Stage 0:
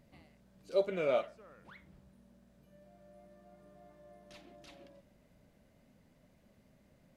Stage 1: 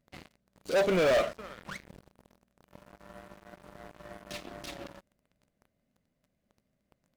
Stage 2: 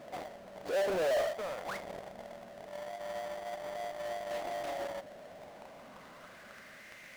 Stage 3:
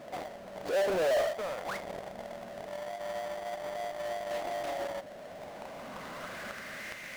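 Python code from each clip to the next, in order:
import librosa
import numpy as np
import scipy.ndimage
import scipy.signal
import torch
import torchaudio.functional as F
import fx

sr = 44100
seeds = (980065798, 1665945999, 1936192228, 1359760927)

y1 = fx.notch(x, sr, hz=900.0, q=9.3)
y1 = fx.leveller(y1, sr, passes=5)
y1 = y1 * 10.0 ** (-2.5 / 20.0)
y2 = fx.filter_sweep_bandpass(y1, sr, from_hz=700.0, to_hz=2100.0, start_s=5.31, end_s=7.02, q=2.4)
y2 = fx.power_curve(y2, sr, exponent=0.35)
y2 = y2 * 10.0 ** (-5.5 / 20.0)
y3 = fx.recorder_agc(y2, sr, target_db=-34.5, rise_db_per_s=6.8, max_gain_db=30)
y3 = y3 * 10.0 ** (2.5 / 20.0)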